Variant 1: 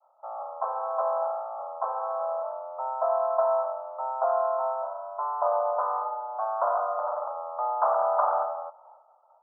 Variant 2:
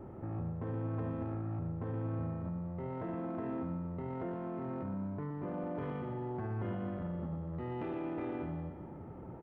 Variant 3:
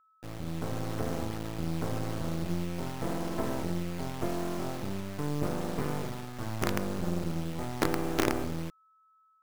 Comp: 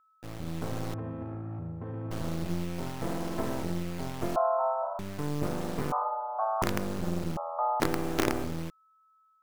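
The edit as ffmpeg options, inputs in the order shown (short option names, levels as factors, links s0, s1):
-filter_complex "[0:a]asplit=3[s0][s1][s2];[2:a]asplit=5[s3][s4][s5][s6][s7];[s3]atrim=end=0.942[s8];[1:a]atrim=start=0.938:end=2.112[s9];[s4]atrim=start=2.108:end=4.362[s10];[s0]atrim=start=4.358:end=4.992[s11];[s5]atrim=start=4.988:end=5.922[s12];[s1]atrim=start=5.918:end=6.622[s13];[s6]atrim=start=6.618:end=7.372[s14];[s2]atrim=start=7.368:end=7.802[s15];[s7]atrim=start=7.798[s16];[s8][s9]acrossfade=d=0.004:c1=hsin:c2=hsin[s17];[s17][s10]acrossfade=d=0.004:c1=hsin:c2=hsin[s18];[s18][s11]acrossfade=d=0.004:c1=hsin:c2=hsin[s19];[s19][s12]acrossfade=d=0.004:c1=hsin:c2=hsin[s20];[s20][s13]acrossfade=d=0.004:c1=hsin:c2=hsin[s21];[s21][s14]acrossfade=d=0.004:c1=hsin:c2=hsin[s22];[s22][s15]acrossfade=d=0.004:c1=hsin:c2=hsin[s23];[s23][s16]acrossfade=d=0.004:c1=hsin:c2=hsin"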